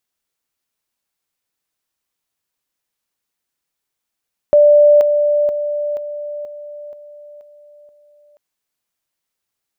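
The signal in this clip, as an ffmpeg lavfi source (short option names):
-f lavfi -i "aevalsrc='pow(10,(-5.5-6*floor(t/0.48))/20)*sin(2*PI*589*t)':d=3.84:s=44100"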